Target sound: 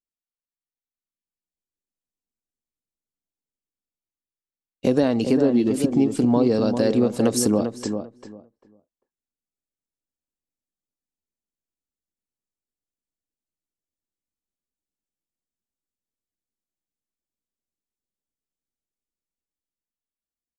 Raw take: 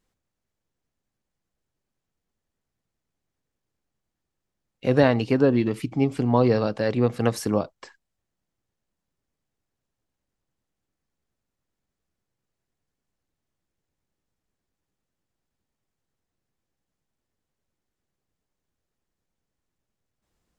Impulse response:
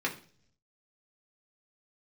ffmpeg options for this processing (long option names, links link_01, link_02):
-filter_complex "[0:a]dynaudnorm=framelen=280:gausssize=9:maxgain=11.5dB,equalizer=frequency=125:width_type=o:width=1:gain=-8,equalizer=frequency=250:width_type=o:width=1:gain=5,equalizer=frequency=1000:width_type=o:width=1:gain=-4,equalizer=frequency=2000:width_type=o:width=1:gain=-8,equalizer=frequency=8000:width_type=o:width=1:gain=9,acompressor=threshold=-25dB:ratio=3,agate=range=-33dB:threshold=-38dB:ratio=3:detection=peak,asplit=2[link_01][link_02];[link_02]adelay=396,lowpass=frequency=1400:poles=1,volume=-6.5dB,asplit=2[link_03][link_04];[link_04]adelay=396,lowpass=frequency=1400:poles=1,volume=0.19,asplit=2[link_05][link_06];[link_06]adelay=396,lowpass=frequency=1400:poles=1,volume=0.19[link_07];[link_03][link_05][link_07]amix=inputs=3:normalize=0[link_08];[link_01][link_08]amix=inputs=2:normalize=0,volume=6dB"